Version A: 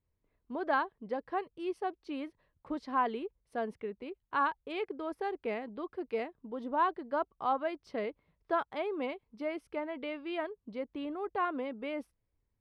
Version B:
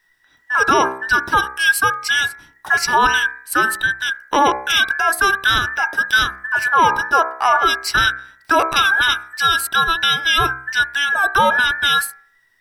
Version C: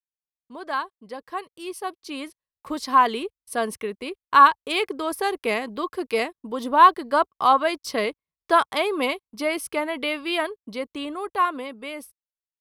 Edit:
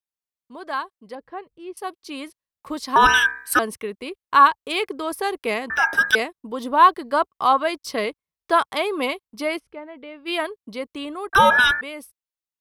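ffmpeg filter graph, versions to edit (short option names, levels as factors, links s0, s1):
-filter_complex "[0:a]asplit=2[s0][s1];[1:a]asplit=3[s2][s3][s4];[2:a]asplit=6[s5][s6][s7][s8][s9][s10];[s5]atrim=end=1.152[s11];[s0]atrim=start=1.148:end=1.772[s12];[s6]atrim=start=1.768:end=2.962[s13];[s2]atrim=start=2.958:end=3.592[s14];[s7]atrim=start=3.588:end=5.702[s15];[s3]atrim=start=5.698:end=6.152[s16];[s8]atrim=start=6.148:end=9.6[s17];[s1]atrim=start=9.56:end=10.29[s18];[s9]atrim=start=10.25:end=11.332[s19];[s4]atrim=start=11.328:end=11.812[s20];[s10]atrim=start=11.808[s21];[s11][s12]acrossfade=d=0.004:c1=hsin:c2=hsin[s22];[s22][s13]acrossfade=d=0.004:c1=hsin:c2=hsin[s23];[s23][s14]acrossfade=d=0.004:c1=hsin:c2=hsin[s24];[s24][s15]acrossfade=d=0.004:c1=hsin:c2=hsin[s25];[s25][s16]acrossfade=d=0.004:c1=hsin:c2=hsin[s26];[s26][s17]acrossfade=d=0.004:c1=hsin:c2=hsin[s27];[s27][s18]acrossfade=d=0.04:c1=tri:c2=tri[s28];[s28][s19]acrossfade=d=0.04:c1=tri:c2=tri[s29];[s29][s20]acrossfade=d=0.004:c1=hsin:c2=hsin[s30];[s30][s21]acrossfade=d=0.004:c1=hsin:c2=hsin"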